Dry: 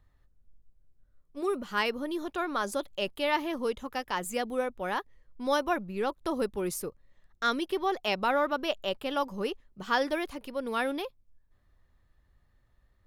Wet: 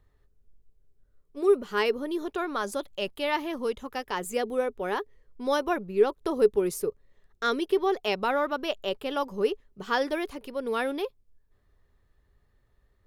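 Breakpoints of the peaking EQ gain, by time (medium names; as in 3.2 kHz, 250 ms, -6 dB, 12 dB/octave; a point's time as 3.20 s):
peaking EQ 420 Hz 0.29 oct
2.29 s +13 dB
2.69 s +2.5 dB
3.72 s +2.5 dB
4.30 s +14 dB
7.64 s +14 dB
8.57 s +3 dB
8.94 s +10.5 dB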